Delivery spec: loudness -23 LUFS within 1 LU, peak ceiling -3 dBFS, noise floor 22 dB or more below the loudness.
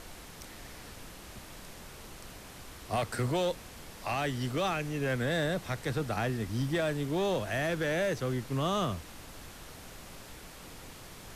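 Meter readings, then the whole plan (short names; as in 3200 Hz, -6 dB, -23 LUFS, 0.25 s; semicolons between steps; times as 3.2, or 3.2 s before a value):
clipped 1.5%; flat tops at -24.5 dBFS; noise floor -49 dBFS; noise floor target -54 dBFS; loudness -32.0 LUFS; peak -24.5 dBFS; loudness target -23.0 LUFS
-> clip repair -24.5 dBFS; noise print and reduce 6 dB; gain +9 dB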